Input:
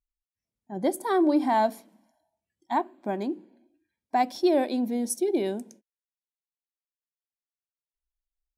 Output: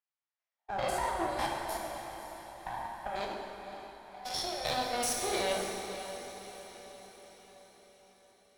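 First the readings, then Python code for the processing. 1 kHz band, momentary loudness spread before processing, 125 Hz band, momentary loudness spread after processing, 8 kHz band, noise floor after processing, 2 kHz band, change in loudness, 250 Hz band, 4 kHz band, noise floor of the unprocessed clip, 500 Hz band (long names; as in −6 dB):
−6.0 dB, 10 LU, can't be measured, 18 LU, +1.5 dB, below −85 dBFS, +0.5 dB, −9.0 dB, −17.5 dB, +5.5 dB, below −85 dBFS, −8.5 dB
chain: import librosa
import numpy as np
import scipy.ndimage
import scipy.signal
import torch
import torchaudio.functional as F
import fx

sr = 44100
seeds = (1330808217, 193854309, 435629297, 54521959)

y = fx.spec_steps(x, sr, hold_ms=100)
y = fx.env_lowpass(y, sr, base_hz=2900.0, full_db=-20.5)
y = scipy.signal.sosfilt(scipy.signal.butter(4, 690.0, 'highpass', fs=sr, output='sos'), y)
y = fx.peak_eq(y, sr, hz=2600.0, db=-2.5, octaves=0.33)
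y = fx.leveller(y, sr, passes=1)
y = fx.over_compress(y, sr, threshold_db=-39.0, ratio=-1.0)
y = fx.cheby_harmonics(y, sr, harmonics=(4, 6, 8), levels_db=(-21, -13, -30), full_scale_db=-19.5)
y = fx.echo_diffused(y, sr, ms=554, feedback_pct=54, wet_db=-11.0)
y = fx.rev_plate(y, sr, seeds[0], rt60_s=2.3, hf_ratio=0.8, predelay_ms=0, drr_db=-0.5)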